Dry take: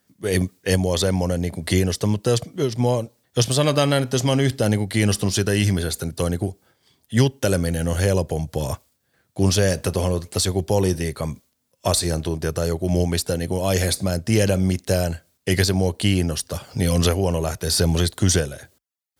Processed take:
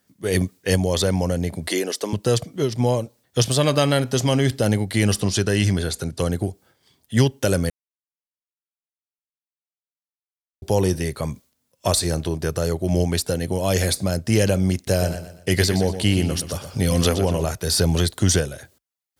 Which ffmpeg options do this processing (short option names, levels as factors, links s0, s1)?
-filter_complex "[0:a]asettb=1/sr,asplit=3[s0][s1][s2];[s0]atrim=end=1.684[s3];[s1]atrim=start=1.68:end=2.13,asetpts=PTS-STARTPTS,afade=t=in:d=0.004:c=qsin,afade=t=out:st=0.446:d=0.004:c=qsin,highpass=f=280:w=0.5412,highpass=f=280:w=1.3066[s4];[s2]atrim=start=2.126[s5];[s3][s4]acrossfade=d=0.004:c1=hsin:c2=qsin[s6];[s6][s5]acrossfade=d=0.004:c1=qsin:c2=hsin,asettb=1/sr,asplit=3[s7][s8][s9];[s7]atrim=end=5.204[s10];[s8]atrim=start=5.2:end=6.31,asetpts=PTS-STARTPTS,afade=t=in:d=0.004:c=qsin,afade=t=out:st=1.106:d=0.004:c=qsin,lowpass=9800[s11];[s9]atrim=start=6.306[s12];[s10][s11]acrossfade=d=0.004:c1=hsin:c2=qsin[s13];[s13][s12]acrossfade=d=0.004:c1=qsin:c2=hsin,asettb=1/sr,asplit=3[s14][s15][s16];[s14]atrim=end=14.754[s17];[s15]atrim=start=14.75:end=17.46,asetpts=PTS-STARTPTS,afade=t=in:d=0.004:c=qsin,afade=t=out:st=2.706:d=0.004:c=qsin,aecho=1:1:121|242|363|484:0.299|0.107|0.0387|0.0139,atrim=end_sample=119511[s18];[s16]atrim=start=17.456[s19];[s17][s18]acrossfade=d=0.004:c1=hsin:c2=qsin[s20];[s20][s19]acrossfade=d=0.004:c1=qsin:c2=hsin,asplit=3[s21][s22][s23];[s21]atrim=end=7.7,asetpts=PTS-STARTPTS,afade=t=out:st=7.696:d=0.004:c=hsin[s24];[s22]atrim=start=7.7:end=10.62,asetpts=PTS-STARTPTS,volume=0[s25];[s23]atrim=start=10.62,asetpts=PTS-STARTPTS,afade=t=in:d=0.004:c=hsin[s26];[s24][s25][s26]concat=n=3:v=0:a=1"